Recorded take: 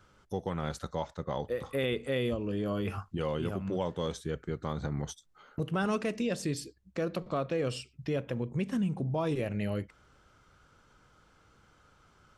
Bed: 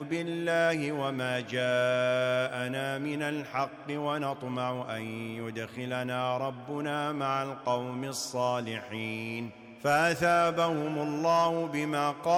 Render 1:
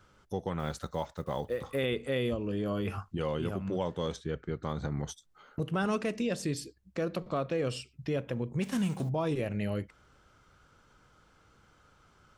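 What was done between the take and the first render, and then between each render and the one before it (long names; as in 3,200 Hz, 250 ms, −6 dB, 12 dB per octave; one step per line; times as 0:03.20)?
0:00.59–0:01.80: one scale factor per block 7 bits
0:04.16–0:04.63: low-pass filter 4,800 Hz
0:08.61–0:09.08: spectral envelope flattened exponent 0.6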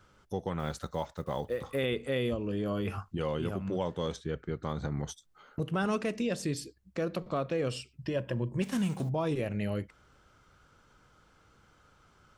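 0:08.02–0:08.62: EQ curve with evenly spaced ripples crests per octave 1.3, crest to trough 9 dB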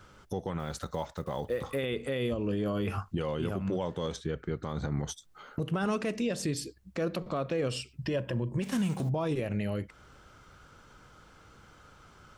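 in parallel at +2 dB: downward compressor, threshold −40 dBFS, peak gain reduction 14 dB
on the sum: brickwall limiter −22 dBFS, peak gain reduction 6 dB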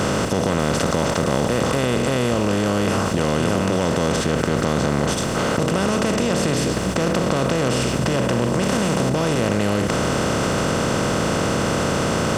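compressor on every frequency bin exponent 0.2
in parallel at −1 dB: compressor whose output falls as the input rises −28 dBFS, ratio −1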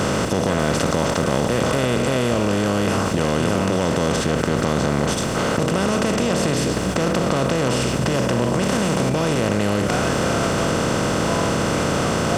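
mix in bed −4.5 dB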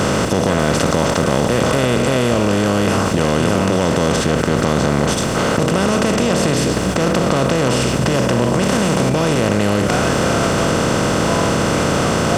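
level +4 dB
brickwall limiter −1 dBFS, peak gain reduction 1 dB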